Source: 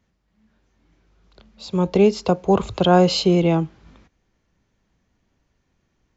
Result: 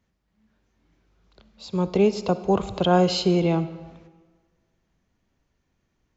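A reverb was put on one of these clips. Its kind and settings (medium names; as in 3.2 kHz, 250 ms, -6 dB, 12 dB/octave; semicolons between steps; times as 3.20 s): algorithmic reverb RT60 1.5 s, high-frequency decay 0.75×, pre-delay 25 ms, DRR 14 dB; trim -4 dB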